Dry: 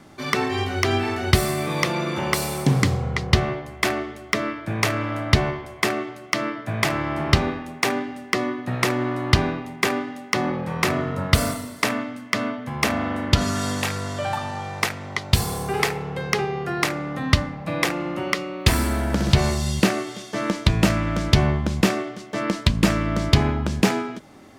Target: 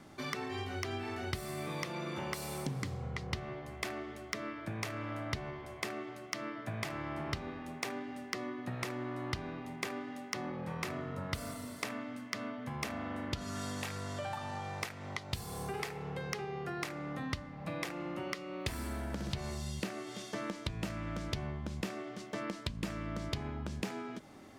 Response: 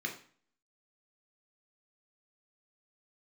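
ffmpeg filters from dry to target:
-af "acompressor=threshold=-30dB:ratio=4,volume=-7dB"

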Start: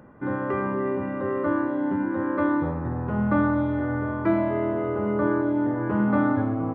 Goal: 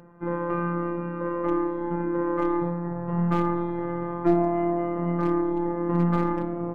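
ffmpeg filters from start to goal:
-af "lowpass=f=1.8k:p=1,aeval=exprs='0.178*(cos(1*acos(clip(val(0)/0.178,-1,1)))-cos(1*PI/2))+0.0251*(cos(2*acos(clip(val(0)/0.178,-1,1)))-cos(2*PI/2))+0.00316*(cos(3*acos(clip(val(0)/0.178,-1,1)))-cos(3*PI/2))':c=same,afftfilt=real='hypot(re,im)*cos(PI*b)':imag='0':win_size=1024:overlap=0.75,volume=3.5dB"

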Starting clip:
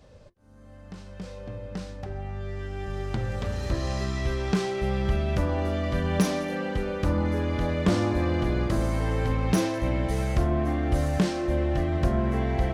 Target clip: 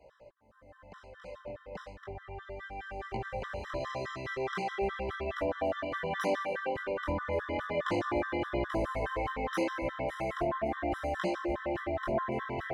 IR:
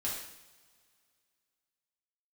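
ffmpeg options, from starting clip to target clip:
-filter_complex "[0:a]flanger=delay=16.5:depth=7.1:speed=0.36,acrossover=split=430 2800:gain=0.158 1 0.178[a][b][c];[a][b][c]amix=inputs=3:normalize=0,afftfilt=real='re*gt(sin(2*PI*4.8*pts/sr)*(1-2*mod(floor(b*sr/1024/1000),2)),0)':imag='im*gt(sin(2*PI*4.8*pts/sr)*(1-2*mod(floor(b*sr/1024/1000),2)),0)':win_size=1024:overlap=0.75,volume=6dB"

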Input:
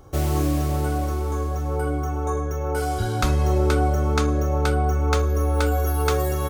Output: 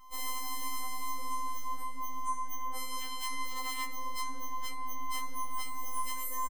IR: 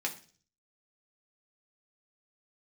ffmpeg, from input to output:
-filter_complex "[0:a]equalizer=f=78:w=3.3:g=-9.5,bandreject=f=147.7:t=h:w=4,bandreject=f=295.4:t=h:w=4,bandreject=f=443.1:t=h:w=4,bandreject=f=590.8:t=h:w=4,bandreject=f=738.5:t=h:w=4,bandreject=f=886.2:t=h:w=4,bandreject=f=1.0339k:t=h:w=4,aeval=exprs='(mod(5.62*val(0)+1,2)-1)/5.62':c=same,asplit=2[a][b];[b]adelay=14,volume=-11dB[c];[a][c]amix=inputs=2:normalize=0,afftfilt=real='hypot(re,im)*cos(PI*b)':imag='0':win_size=512:overlap=0.75,acrossover=split=260|3000[d][e][f];[d]acompressor=threshold=-32dB:ratio=4[g];[g][e][f]amix=inputs=3:normalize=0,lowshelf=f=300:t=q:w=3:g=-8.5,alimiter=level_in=0.5dB:limit=-24dB:level=0:latency=1:release=74,volume=-0.5dB,asplit=2[h][i];[i]adelay=73,lowpass=f=1.3k:p=1,volume=-7dB,asplit=2[j][k];[k]adelay=73,lowpass=f=1.3k:p=1,volume=0.37,asplit=2[l][m];[m]adelay=73,lowpass=f=1.3k:p=1,volume=0.37,asplit=2[n][o];[o]adelay=73,lowpass=f=1.3k:p=1,volume=0.37[p];[j][l][n][p]amix=inputs=4:normalize=0[q];[h][q]amix=inputs=2:normalize=0,afftfilt=real='re*3.46*eq(mod(b,12),0)':imag='im*3.46*eq(mod(b,12),0)':win_size=2048:overlap=0.75"

